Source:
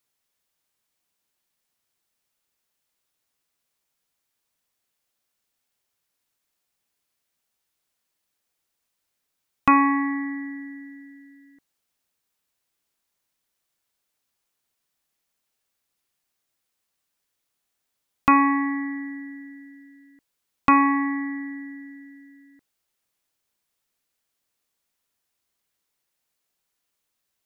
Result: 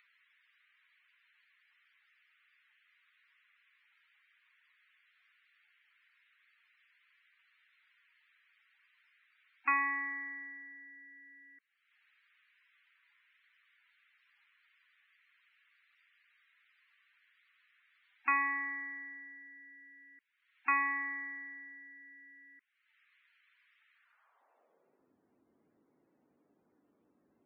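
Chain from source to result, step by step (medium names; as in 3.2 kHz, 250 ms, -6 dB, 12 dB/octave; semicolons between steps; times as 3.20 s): band-pass sweep 2 kHz -> 280 Hz, 23.92–25.12 s; loudest bins only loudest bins 64; upward compressor, threshold -45 dBFS; trim -4.5 dB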